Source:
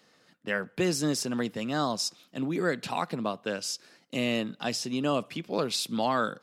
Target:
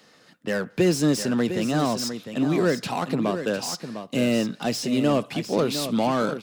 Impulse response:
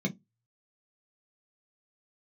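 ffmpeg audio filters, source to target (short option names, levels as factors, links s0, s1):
-filter_complex "[0:a]acrossover=split=630[s0][s1];[s1]asoftclip=type=tanh:threshold=0.0188[s2];[s0][s2]amix=inputs=2:normalize=0,aecho=1:1:704:0.335,volume=2.37"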